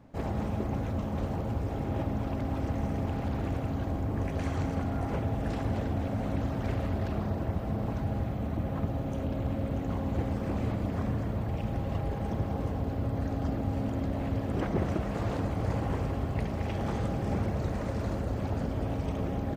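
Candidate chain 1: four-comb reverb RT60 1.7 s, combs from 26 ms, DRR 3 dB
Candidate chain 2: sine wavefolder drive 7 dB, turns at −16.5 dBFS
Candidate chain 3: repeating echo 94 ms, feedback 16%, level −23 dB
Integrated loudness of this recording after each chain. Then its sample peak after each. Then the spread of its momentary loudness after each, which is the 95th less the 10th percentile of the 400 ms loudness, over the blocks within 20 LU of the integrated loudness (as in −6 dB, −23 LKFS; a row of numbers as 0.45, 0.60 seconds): −30.0, −23.5, −32.5 LKFS; −15.0, −16.5, −16.5 dBFS; 3, 1, 2 LU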